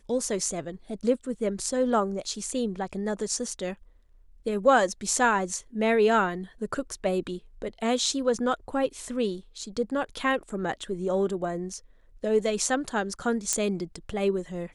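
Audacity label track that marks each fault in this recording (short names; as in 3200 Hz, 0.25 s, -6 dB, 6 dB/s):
13.530000	13.530000	pop -10 dBFS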